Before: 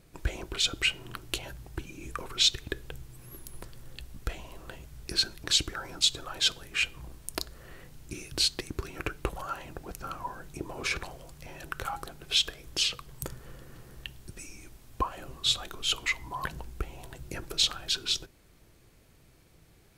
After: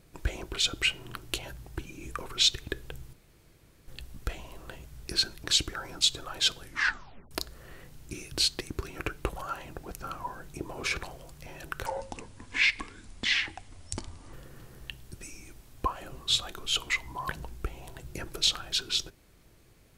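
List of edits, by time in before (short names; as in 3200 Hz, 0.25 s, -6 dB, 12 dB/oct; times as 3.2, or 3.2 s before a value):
3.13–3.88 room tone
6.61 tape stop 0.70 s
11.86–13.49 speed 66%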